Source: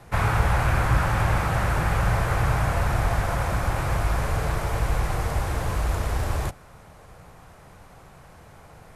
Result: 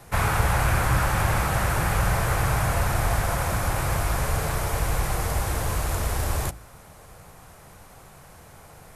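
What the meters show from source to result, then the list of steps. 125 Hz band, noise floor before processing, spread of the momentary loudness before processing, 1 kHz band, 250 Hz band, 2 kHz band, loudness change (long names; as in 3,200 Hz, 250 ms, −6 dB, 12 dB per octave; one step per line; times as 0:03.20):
−1.0 dB, −49 dBFS, 5 LU, +0.5 dB, −0.5 dB, +1.0 dB, 0.0 dB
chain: high-shelf EQ 6,500 Hz +12 dB
hum removal 55.51 Hz, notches 6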